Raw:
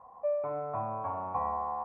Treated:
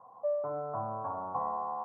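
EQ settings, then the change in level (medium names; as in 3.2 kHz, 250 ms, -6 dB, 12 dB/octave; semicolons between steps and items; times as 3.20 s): elliptic band-pass 110–1500 Hz, stop band 40 dB; distance through air 170 m; 0.0 dB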